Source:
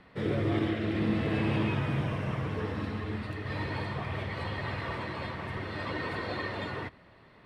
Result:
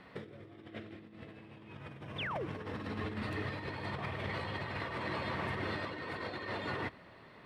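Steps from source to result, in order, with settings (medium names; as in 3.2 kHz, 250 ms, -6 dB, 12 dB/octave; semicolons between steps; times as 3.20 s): bass shelf 81 Hz -10 dB; compressor with a negative ratio -38 dBFS, ratio -0.5; painted sound fall, 2.18–2.46 s, 290–3800 Hz -36 dBFS; trim -2.5 dB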